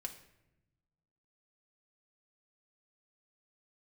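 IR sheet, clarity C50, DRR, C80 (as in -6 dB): 11.0 dB, 2.0 dB, 13.5 dB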